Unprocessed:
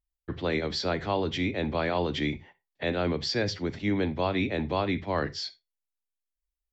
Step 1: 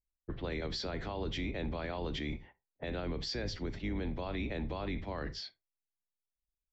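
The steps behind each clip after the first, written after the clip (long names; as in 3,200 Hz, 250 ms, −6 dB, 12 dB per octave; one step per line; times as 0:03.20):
sub-octave generator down 2 octaves, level 0 dB
low-pass that shuts in the quiet parts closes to 490 Hz, open at −25 dBFS
brickwall limiter −23.5 dBFS, peak gain reduction 10 dB
level −5 dB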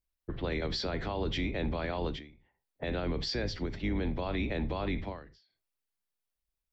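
parametric band 6,800 Hz −4.5 dB 0.44 octaves
every ending faded ahead of time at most 100 dB per second
level +4.5 dB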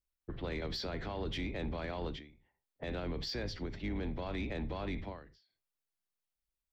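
soft clipping −25 dBFS, distortion −21 dB
level −4 dB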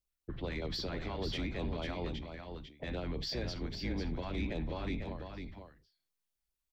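auto-filter notch sine 5.1 Hz 390–1,900 Hz
single-tap delay 498 ms −6.5 dB
level +1 dB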